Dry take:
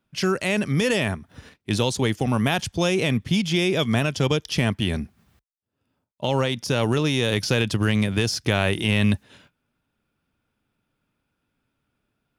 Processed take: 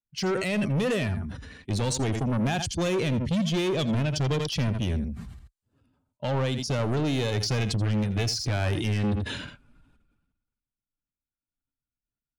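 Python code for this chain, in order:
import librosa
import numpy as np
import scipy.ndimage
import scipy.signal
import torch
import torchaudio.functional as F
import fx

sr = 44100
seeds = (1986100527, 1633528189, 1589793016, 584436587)

p1 = fx.bin_expand(x, sr, power=1.5)
p2 = scipy.signal.sosfilt(scipy.signal.butter(4, 9300.0, 'lowpass', fs=sr, output='sos'), p1)
p3 = fx.low_shelf(p2, sr, hz=380.0, db=7.0)
p4 = 10.0 ** (-22.5 / 20.0) * np.tanh(p3 / 10.0 ** (-22.5 / 20.0))
p5 = p4 + fx.echo_single(p4, sr, ms=83, db=-15.0, dry=0)
y = fx.sustainer(p5, sr, db_per_s=45.0)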